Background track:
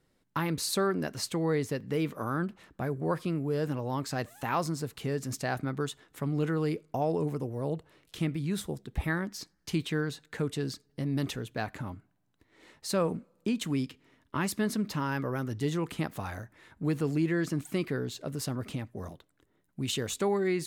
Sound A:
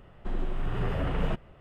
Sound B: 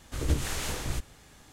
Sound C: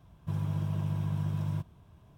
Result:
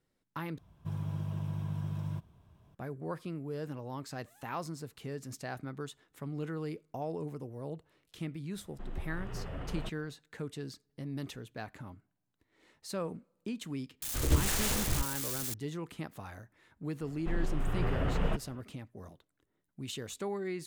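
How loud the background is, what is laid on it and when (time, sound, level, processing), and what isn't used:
background track −8.5 dB
0:00.58: overwrite with C −4.5 dB
0:08.54: mix in A −11 dB
0:14.02: mix in B + spike at every zero crossing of −29.5 dBFS
0:17.01: mix in A −2 dB

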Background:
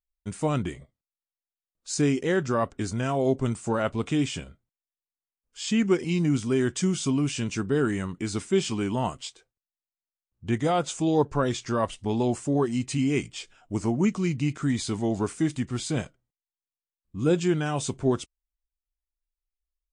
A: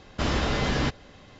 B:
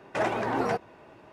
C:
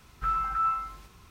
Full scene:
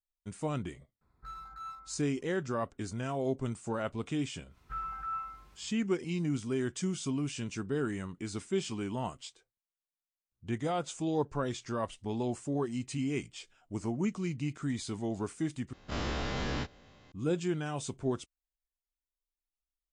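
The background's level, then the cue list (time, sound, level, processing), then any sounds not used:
background −8.5 dB
0:01.01: mix in C −15.5 dB + adaptive Wiener filter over 15 samples
0:04.48: mix in C −9.5 dB, fades 0.10 s + high-shelf EQ 3,600 Hz −5.5 dB
0:15.73: overwrite with A −12.5 dB + every bin's largest magnitude spread in time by 60 ms
not used: B

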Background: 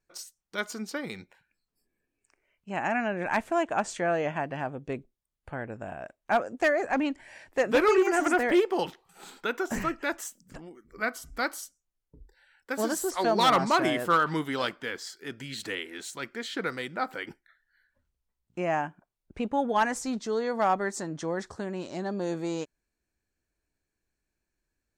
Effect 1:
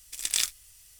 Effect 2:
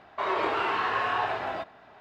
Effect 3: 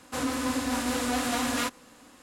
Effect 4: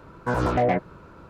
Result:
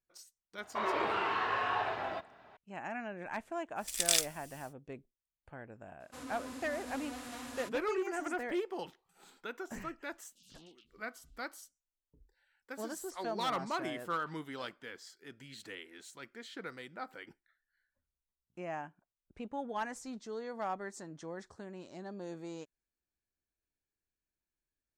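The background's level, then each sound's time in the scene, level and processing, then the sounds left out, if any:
background −12.5 dB
0:00.57: mix in 2 −5.5 dB
0:03.75: mix in 1 −2 dB, fades 0.10 s
0:06.00: mix in 3 −17 dB
0:10.09: mix in 4 −14.5 dB + Butterworth high-pass 2,800 Hz 96 dB per octave

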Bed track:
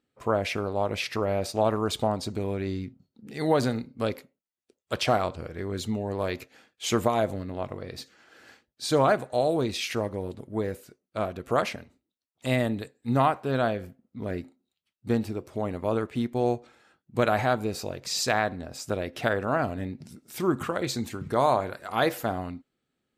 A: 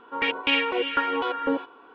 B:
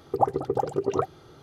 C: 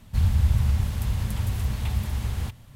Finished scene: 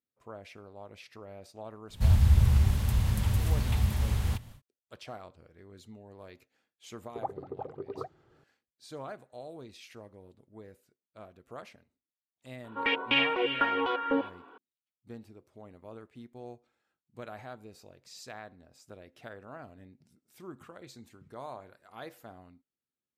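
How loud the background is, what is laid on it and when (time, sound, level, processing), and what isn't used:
bed track −20 dB
0:01.87: mix in C −0.5 dB, fades 0.10 s
0:07.02: mix in B −13.5 dB + low-pass filter 2,100 Hz
0:12.64: mix in A −3 dB

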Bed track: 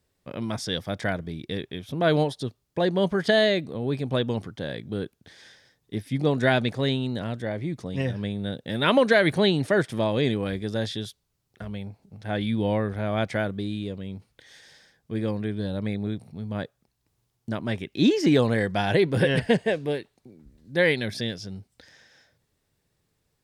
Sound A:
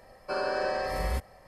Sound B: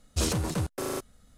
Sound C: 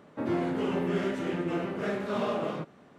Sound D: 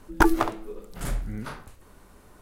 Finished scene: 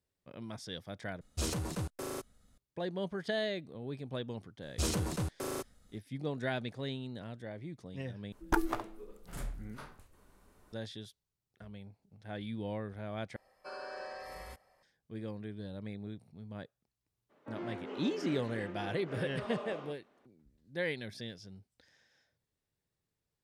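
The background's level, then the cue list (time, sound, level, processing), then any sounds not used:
bed track −14 dB
0:01.21: overwrite with B −7.5 dB
0:04.62: mix in B −5.5 dB
0:08.32: overwrite with D −11 dB
0:13.36: overwrite with A −12 dB + low-shelf EQ 340 Hz −10.5 dB
0:17.29: mix in C −11 dB, fades 0.02 s + band-pass filter 310–5,400 Hz

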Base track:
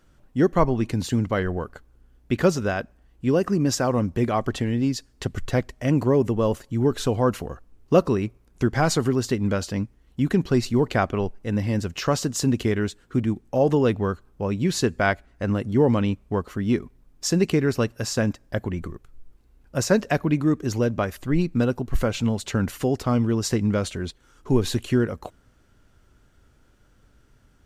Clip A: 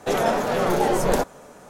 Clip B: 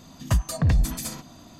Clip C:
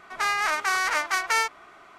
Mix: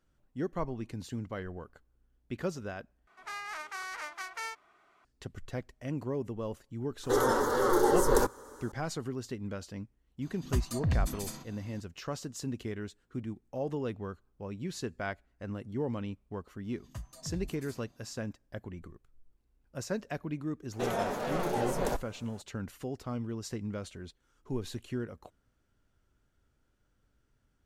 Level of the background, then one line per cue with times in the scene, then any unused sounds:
base track −15 dB
0:03.07: overwrite with C −15.5 dB
0:07.03: mix in A −1.5 dB + phaser with its sweep stopped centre 670 Hz, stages 6
0:10.22: mix in B −8.5 dB
0:16.64: mix in B −16.5 dB + flanger 1.5 Hz, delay 6.3 ms, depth 2.7 ms, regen +82%
0:20.73: mix in A −11 dB

